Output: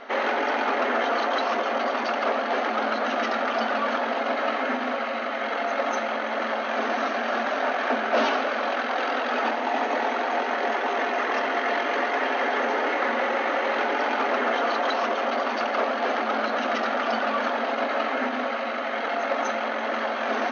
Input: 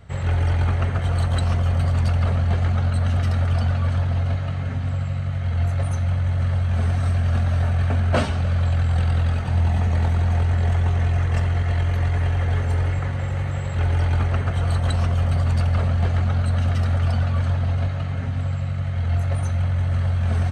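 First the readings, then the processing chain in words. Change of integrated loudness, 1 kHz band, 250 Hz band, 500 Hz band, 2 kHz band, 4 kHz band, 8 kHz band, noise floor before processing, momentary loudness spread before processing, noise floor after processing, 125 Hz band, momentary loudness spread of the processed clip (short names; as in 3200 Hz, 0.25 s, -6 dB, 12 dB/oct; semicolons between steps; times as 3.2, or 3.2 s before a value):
-3.0 dB, +10.0 dB, -0.5 dB, +8.5 dB, +9.0 dB, +5.5 dB, -2.5 dB, -25 dBFS, 5 LU, -29 dBFS, under -35 dB, 3 LU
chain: overdrive pedal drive 25 dB, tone 1300 Hz, clips at -8.5 dBFS; notches 60/120/180/240/300/360/420/480 Hz; limiter -14 dBFS, peak gain reduction 4 dB; FFT band-pass 220–6600 Hz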